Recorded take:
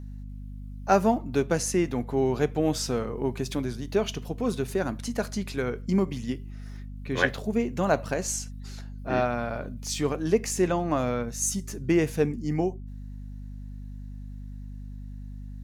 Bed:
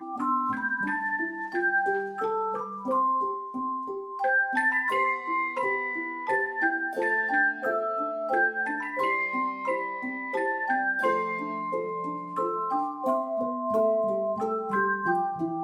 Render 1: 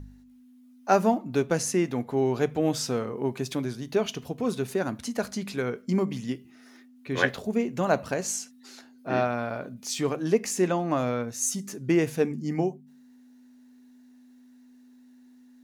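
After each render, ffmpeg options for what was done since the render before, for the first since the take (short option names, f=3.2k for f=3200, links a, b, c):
-af "bandreject=f=50:t=h:w=4,bandreject=f=100:t=h:w=4,bandreject=f=150:t=h:w=4,bandreject=f=200:t=h:w=4"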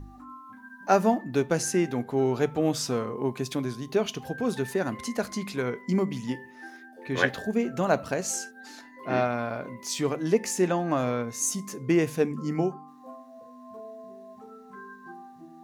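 -filter_complex "[1:a]volume=-19dB[a];[0:a][a]amix=inputs=2:normalize=0"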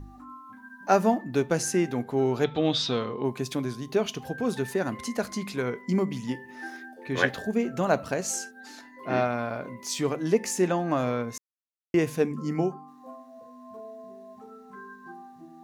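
-filter_complex "[0:a]asettb=1/sr,asplit=3[a][b][c];[a]atrim=end=2.444[d];[b]atrim=start=2.44:end=3.25,asetpts=PTS-STARTPTS,afade=t=in:d=0.004:c=qsin,afade=t=out:st=0.806:d=0.004:c=qsin,lowpass=f=3.7k:t=q:w=8[e];[c]atrim=start=3.246[f];[d][e]acrossfade=d=0.004:c1=hsin:c2=qsin[g];[g][f]acrossfade=d=0.004:c1=qsin:c2=hsin,asplit=3[h][i][j];[h]afade=t=out:st=6.48:d=0.02[k];[i]acontrast=28,afade=t=in:st=6.48:d=0.02,afade=t=out:st=6.93:d=0.02[l];[j]afade=t=in:st=6.93:d=0.02[m];[k][l][m]amix=inputs=3:normalize=0,asplit=3[n][o][p];[n]atrim=end=11.38,asetpts=PTS-STARTPTS,afade=t=out:st=11.376:d=0.004:c=hsin[q];[o]atrim=start=11.38:end=11.94,asetpts=PTS-STARTPTS,volume=0[r];[p]atrim=start=11.94,asetpts=PTS-STARTPTS,afade=t=in:d=0.004:c=hsin[s];[q][r][s]concat=n=3:v=0:a=1"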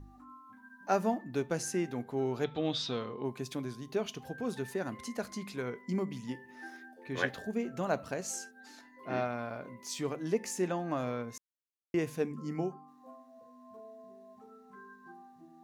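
-af "volume=-8dB"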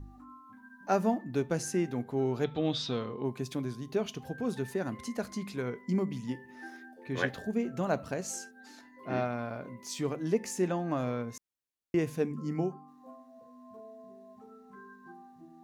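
-af "lowshelf=f=320:g=5.5"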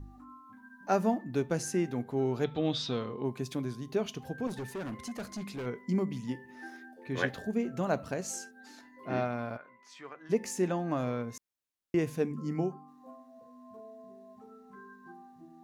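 -filter_complex "[0:a]asettb=1/sr,asplit=3[a][b][c];[a]atrim=end=4.474[d];[b]atrim=start=4.47:end=5.66,asetpts=PTS-STARTPTS,afade=t=in:d=0.004:c=qsin,afade=t=out:st=1.186:d=0.004:c=qsin,asoftclip=type=hard:threshold=-34.5dB[e];[c]atrim=start=5.656[f];[d][e]acrossfade=d=0.004:c1=hsin:c2=qsin[g];[g][f]acrossfade=d=0.004:c1=qsin:c2=hsin,asplit=3[h][i][j];[h]afade=t=out:st=9.56:d=0.02[k];[i]bandpass=f=1.5k:t=q:w=1.7,afade=t=in:st=9.56:d=0.02,afade=t=out:st=10.29:d=0.02[l];[j]afade=t=in:st=10.29:d=0.02[m];[k][l][m]amix=inputs=3:normalize=0"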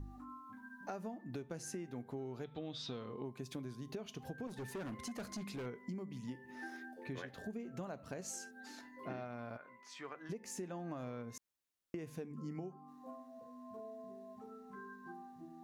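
-af "alimiter=limit=-23.5dB:level=0:latency=1:release=347,acompressor=threshold=-42dB:ratio=5"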